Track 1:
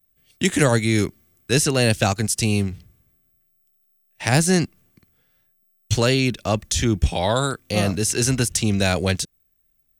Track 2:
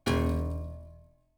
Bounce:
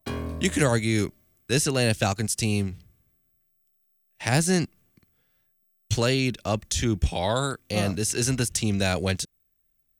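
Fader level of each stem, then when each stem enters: -4.5 dB, -4.5 dB; 0.00 s, 0.00 s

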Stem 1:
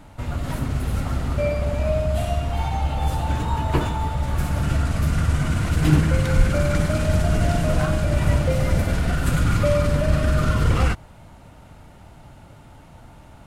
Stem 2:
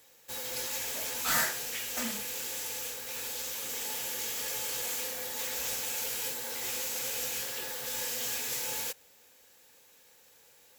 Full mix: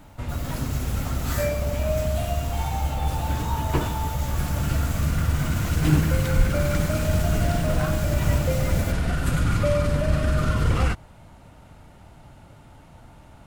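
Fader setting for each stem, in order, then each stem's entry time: -2.5 dB, -6.0 dB; 0.00 s, 0.00 s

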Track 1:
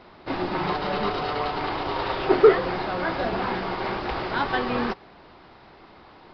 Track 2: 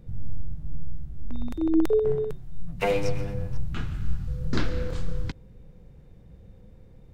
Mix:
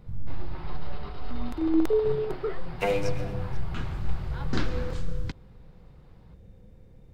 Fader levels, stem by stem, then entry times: -17.5 dB, -1.5 dB; 0.00 s, 0.00 s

